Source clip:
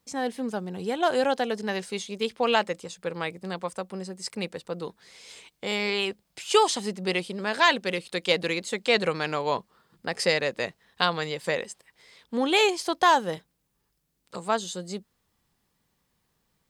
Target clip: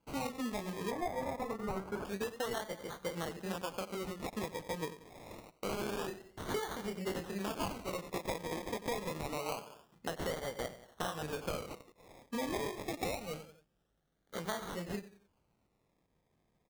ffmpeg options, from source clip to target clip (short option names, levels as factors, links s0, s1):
-filter_complex "[0:a]flanger=delay=18:depth=7.8:speed=2.5,asplit=2[s0][s1];[s1]adelay=90,lowpass=f=4400:p=1,volume=0.158,asplit=2[s2][s3];[s3]adelay=90,lowpass=f=4400:p=1,volume=0.37,asplit=2[s4][s5];[s5]adelay=90,lowpass=f=4400:p=1,volume=0.37[s6];[s0][s2][s4][s6]amix=inputs=4:normalize=0,acrusher=samples=24:mix=1:aa=0.000001:lfo=1:lforange=14.4:lforate=0.26,asettb=1/sr,asplit=3[s7][s8][s9];[s7]atrim=end=12.844[s10];[s8]atrim=start=12.84:end=14.38,asetpts=PTS-STARTPTS,afade=t=in:d=0.004:c=qsin,afade=t=out:st=1.536:d=0.004:c=qsin,equalizer=f=1000:w=4.7:g=-12.5[s11];[s9]atrim=start=14.376[s12];[s10][s11]acrossfade=d=0.004:c1=hsin:c2=qsin[s13];[s13][s12]acrossfade=d=0.004:c1=qsin:c2=hsin,acompressor=threshold=0.02:ratio=12,asettb=1/sr,asplit=3[s14][s15][s16];[s14]atrim=end=0.914[s17];[s15]atrim=start=0.91:end=2.05,asetpts=PTS-STARTPTS,afade=t=in:d=0.004:c=qsin,afade=t=out:st=1.136:d=0.004:c=qsin,highshelf=f=2100:t=q:w=1.5:g=-8[s18];[s16]atrim=start=2.046[s19];[s17][s18]acrossfade=d=0.004:c1=hsin:c2=qsin[s20];[s20][s19]acrossfade=d=0.004:c1=qsin:c2=hsin"